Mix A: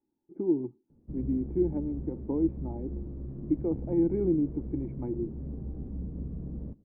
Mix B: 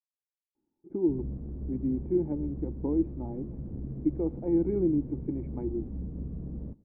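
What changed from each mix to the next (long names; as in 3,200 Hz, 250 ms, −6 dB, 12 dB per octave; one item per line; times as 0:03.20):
speech: entry +0.55 s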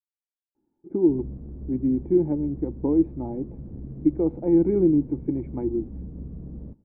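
speech +7.0 dB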